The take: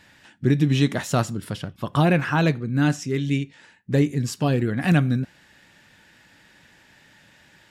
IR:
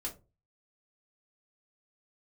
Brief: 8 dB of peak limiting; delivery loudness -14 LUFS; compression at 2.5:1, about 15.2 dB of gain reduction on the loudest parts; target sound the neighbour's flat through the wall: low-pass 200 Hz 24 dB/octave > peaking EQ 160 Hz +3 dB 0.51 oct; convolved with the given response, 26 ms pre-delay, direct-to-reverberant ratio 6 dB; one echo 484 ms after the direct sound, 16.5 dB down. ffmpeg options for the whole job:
-filter_complex "[0:a]acompressor=threshold=0.0126:ratio=2.5,alimiter=level_in=1.68:limit=0.0631:level=0:latency=1,volume=0.596,aecho=1:1:484:0.15,asplit=2[s0][s1];[1:a]atrim=start_sample=2205,adelay=26[s2];[s1][s2]afir=irnorm=-1:irlink=0,volume=0.501[s3];[s0][s3]amix=inputs=2:normalize=0,lowpass=f=200:w=0.5412,lowpass=f=200:w=1.3066,equalizer=f=160:t=o:w=0.51:g=3,volume=20"

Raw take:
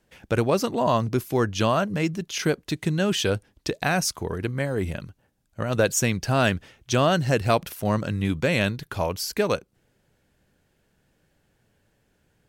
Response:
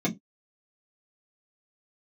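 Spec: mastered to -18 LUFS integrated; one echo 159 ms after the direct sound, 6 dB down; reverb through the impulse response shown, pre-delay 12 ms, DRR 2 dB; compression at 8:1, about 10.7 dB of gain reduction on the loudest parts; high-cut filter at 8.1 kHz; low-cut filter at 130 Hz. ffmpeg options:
-filter_complex "[0:a]highpass=130,lowpass=8100,acompressor=threshold=0.0447:ratio=8,aecho=1:1:159:0.501,asplit=2[s0][s1];[1:a]atrim=start_sample=2205,adelay=12[s2];[s1][s2]afir=irnorm=-1:irlink=0,volume=0.282[s3];[s0][s3]amix=inputs=2:normalize=0,volume=2"

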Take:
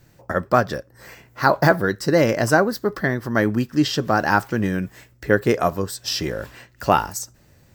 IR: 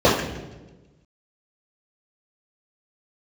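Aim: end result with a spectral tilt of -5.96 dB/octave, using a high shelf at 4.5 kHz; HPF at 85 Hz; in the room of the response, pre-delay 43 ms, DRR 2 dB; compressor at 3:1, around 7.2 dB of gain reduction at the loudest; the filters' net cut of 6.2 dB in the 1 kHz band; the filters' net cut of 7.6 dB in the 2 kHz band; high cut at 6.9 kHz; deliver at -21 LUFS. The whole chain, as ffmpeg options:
-filter_complex "[0:a]highpass=85,lowpass=6900,equalizer=f=1000:t=o:g=-7,equalizer=f=2000:t=o:g=-8,highshelf=f=4500:g=4.5,acompressor=threshold=0.0708:ratio=3,asplit=2[s0][s1];[1:a]atrim=start_sample=2205,adelay=43[s2];[s1][s2]afir=irnorm=-1:irlink=0,volume=0.0447[s3];[s0][s3]amix=inputs=2:normalize=0,volume=1.41"

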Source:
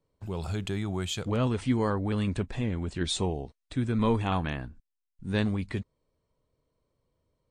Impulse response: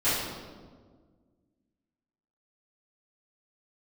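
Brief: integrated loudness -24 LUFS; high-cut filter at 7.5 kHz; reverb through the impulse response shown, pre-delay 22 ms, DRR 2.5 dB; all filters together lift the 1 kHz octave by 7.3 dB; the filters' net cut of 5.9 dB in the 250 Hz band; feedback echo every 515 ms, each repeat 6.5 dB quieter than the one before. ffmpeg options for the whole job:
-filter_complex "[0:a]lowpass=7500,equalizer=f=250:t=o:g=-8,equalizer=f=1000:t=o:g=9,aecho=1:1:515|1030|1545|2060|2575|3090:0.473|0.222|0.105|0.0491|0.0231|0.0109,asplit=2[s0][s1];[1:a]atrim=start_sample=2205,adelay=22[s2];[s1][s2]afir=irnorm=-1:irlink=0,volume=0.158[s3];[s0][s3]amix=inputs=2:normalize=0,volume=1.5"

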